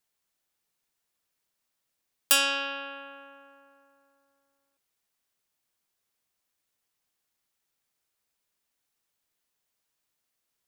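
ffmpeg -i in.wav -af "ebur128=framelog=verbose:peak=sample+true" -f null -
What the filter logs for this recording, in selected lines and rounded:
Integrated loudness:
  I:         -24.9 LUFS
  Threshold: -39.1 LUFS
Loudness range:
  LRA:        15.3 LU
  Threshold: -52.4 LUFS
  LRA low:   -46.0 LUFS
  LRA high:  -30.6 LUFS
Sample peak:
  Peak:       -7.5 dBFS
True peak:
  Peak:       -6.9 dBFS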